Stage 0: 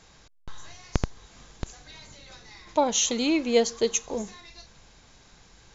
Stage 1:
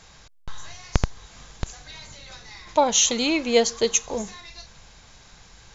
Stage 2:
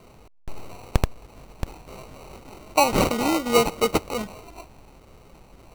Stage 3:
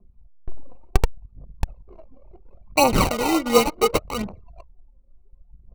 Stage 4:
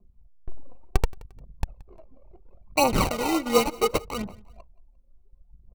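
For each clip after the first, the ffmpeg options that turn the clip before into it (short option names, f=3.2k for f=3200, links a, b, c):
-af "equalizer=f=310:t=o:w=1.3:g=-6,volume=5.5dB"
-af "acrusher=samples=26:mix=1:aa=0.000001"
-af "aphaser=in_gain=1:out_gain=1:delay=4:decay=0.57:speed=0.7:type=triangular,anlmdn=10"
-af "aecho=1:1:175|350:0.0708|0.0255,volume=-4dB"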